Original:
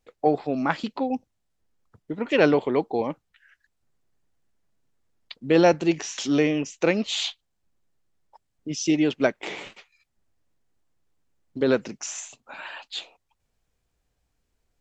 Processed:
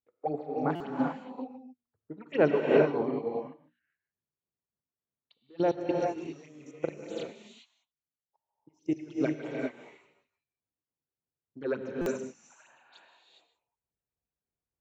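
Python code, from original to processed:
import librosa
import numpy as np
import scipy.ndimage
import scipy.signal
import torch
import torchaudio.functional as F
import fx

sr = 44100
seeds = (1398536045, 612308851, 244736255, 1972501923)

y = fx.peak_eq(x, sr, hz=3400.0, db=-5.0, octaves=0.22)
y = fx.hum_notches(y, sr, base_hz=60, count=6)
y = y + 10.0 ** (-12.0 / 20.0) * np.pad(y, (int(152 * sr / 1000.0), 0))[:len(y)]
y = fx.phaser_stages(y, sr, stages=6, low_hz=160.0, high_hz=4900.0, hz=3.4, feedback_pct=40)
y = fx.high_shelf(y, sr, hz=5600.0, db=-10.5)
y = fx.level_steps(y, sr, step_db=18, at=(5.4, 9.14))
y = scipy.signal.sosfilt(scipy.signal.butter(2, 90.0, 'highpass', fs=sr, output='sos'), y)
y = fx.notch(y, sr, hz=4900.0, q=8.1)
y = fx.rev_gated(y, sr, seeds[0], gate_ms=440, shape='rising', drr_db=-1.5)
y = fx.buffer_glitch(y, sr, at_s=(0.75, 12.01), block=256, repeats=8)
y = fx.upward_expand(y, sr, threshold_db=-42.0, expansion=1.5)
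y = F.gain(torch.from_numpy(y), -4.5).numpy()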